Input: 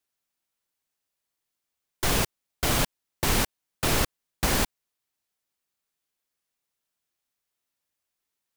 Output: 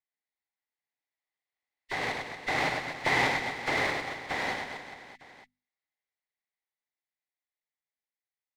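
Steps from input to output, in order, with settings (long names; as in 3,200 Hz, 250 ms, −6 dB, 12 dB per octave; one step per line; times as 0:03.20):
hearing-aid frequency compression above 1,700 Hz 1.5 to 1
source passing by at 0:03.14, 20 m/s, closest 9.6 metres
parametric band 2,000 Hz +14 dB 0.27 octaves
mains-hum notches 50/100/150/200/250 Hz
in parallel at +2.5 dB: downward compressor, threshold −32 dBFS, peak gain reduction 13 dB
on the sum: loudspeaker in its box 180–4,200 Hz, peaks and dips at 200 Hz −9 dB, 350 Hz −3 dB, 800 Hz +7 dB, 1,300 Hz −4 dB, 2,900 Hz −5 dB
on a send: reverse bouncing-ball delay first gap 100 ms, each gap 1.3×, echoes 5
on the sum: windowed peak hold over 3 samples
level −4 dB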